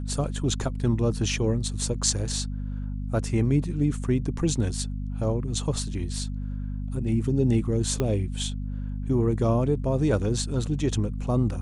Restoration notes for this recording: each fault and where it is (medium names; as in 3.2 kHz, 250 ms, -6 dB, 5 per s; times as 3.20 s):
hum 50 Hz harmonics 5 -31 dBFS
8.00 s: pop -13 dBFS